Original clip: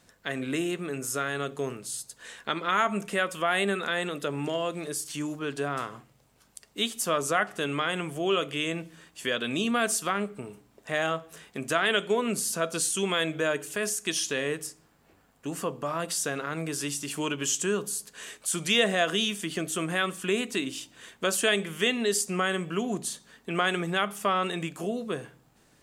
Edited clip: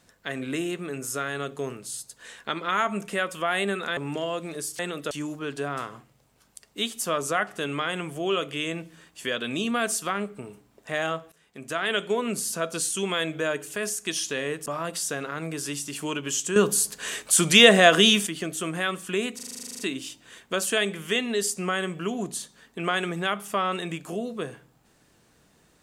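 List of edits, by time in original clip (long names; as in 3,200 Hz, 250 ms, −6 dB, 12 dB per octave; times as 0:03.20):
0:03.97–0:04.29: move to 0:05.11
0:11.32–0:12.01: fade in, from −20.5 dB
0:14.66–0:15.81: remove
0:17.71–0:19.42: clip gain +9.5 dB
0:20.50: stutter 0.04 s, 12 plays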